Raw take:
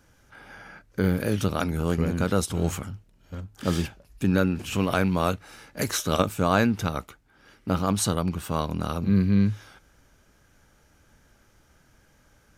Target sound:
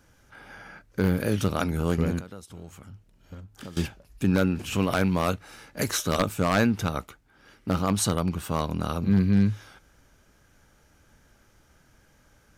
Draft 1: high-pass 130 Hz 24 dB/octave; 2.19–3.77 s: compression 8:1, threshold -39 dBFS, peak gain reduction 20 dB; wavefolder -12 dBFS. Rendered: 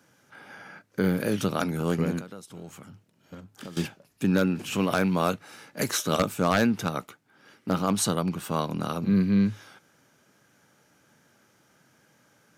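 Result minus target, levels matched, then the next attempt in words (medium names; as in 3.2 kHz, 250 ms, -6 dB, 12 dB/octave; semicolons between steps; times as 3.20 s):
125 Hz band -2.5 dB
2.19–3.77 s: compression 8:1, threshold -39 dBFS, peak gain reduction 21 dB; wavefolder -12 dBFS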